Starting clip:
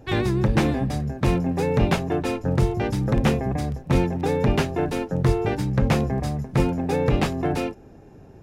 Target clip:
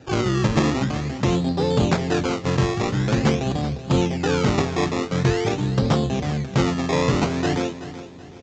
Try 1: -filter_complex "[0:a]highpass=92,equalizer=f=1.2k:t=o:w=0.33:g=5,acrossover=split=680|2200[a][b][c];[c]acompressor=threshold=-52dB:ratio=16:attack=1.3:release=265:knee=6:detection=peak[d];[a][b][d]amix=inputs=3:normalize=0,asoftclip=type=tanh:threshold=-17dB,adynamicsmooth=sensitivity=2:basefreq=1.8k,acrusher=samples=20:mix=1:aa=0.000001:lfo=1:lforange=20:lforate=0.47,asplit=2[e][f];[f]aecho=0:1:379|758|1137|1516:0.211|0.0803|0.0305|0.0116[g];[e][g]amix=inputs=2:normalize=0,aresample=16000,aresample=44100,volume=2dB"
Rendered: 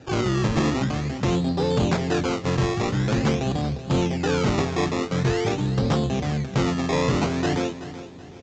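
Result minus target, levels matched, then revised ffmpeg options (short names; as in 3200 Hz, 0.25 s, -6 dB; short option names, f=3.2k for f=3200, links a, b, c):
soft clip: distortion +15 dB
-filter_complex "[0:a]highpass=92,equalizer=f=1.2k:t=o:w=0.33:g=5,acrossover=split=680|2200[a][b][c];[c]acompressor=threshold=-52dB:ratio=16:attack=1.3:release=265:knee=6:detection=peak[d];[a][b][d]amix=inputs=3:normalize=0,asoftclip=type=tanh:threshold=-6.5dB,adynamicsmooth=sensitivity=2:basefreq=1.8k,acrusher=samples=20:mix=1:aa=0.000001:lfo=1:lforange=20:lforate=0.47,asplit=2[e][f];[f]aecho=0:1:379|758|1137|1516:0.211|0.0803|0.0305|0.0116[g];[e][g]amix=inputs=2:normalize=0,aresample=16000,aresample=44100,volume=2dB"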